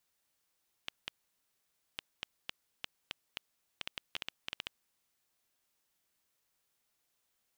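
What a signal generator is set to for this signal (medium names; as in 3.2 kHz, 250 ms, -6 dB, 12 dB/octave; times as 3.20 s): random clicks 4.5 per s -19.5 dBFS 4.33 s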